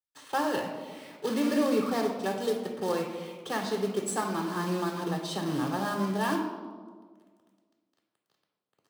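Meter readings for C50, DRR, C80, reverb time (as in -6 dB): 4.5 dB, 1.5 dB, 7.0 dB, 1.7 s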